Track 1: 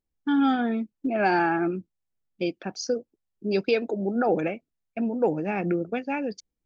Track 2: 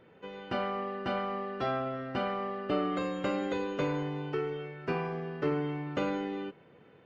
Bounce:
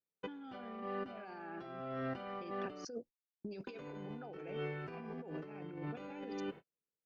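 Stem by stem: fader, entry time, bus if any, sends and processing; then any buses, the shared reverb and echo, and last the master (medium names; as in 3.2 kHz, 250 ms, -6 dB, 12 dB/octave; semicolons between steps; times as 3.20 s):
-13.5 dB, 0.00 s, no send, none
-5.5 dB, 0.00 s, muted 2.85–3.67 s, no send, none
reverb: none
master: gate -54 dBFS, range -47 dB; compressor with a negative ratio -45 dBFS, ratio -1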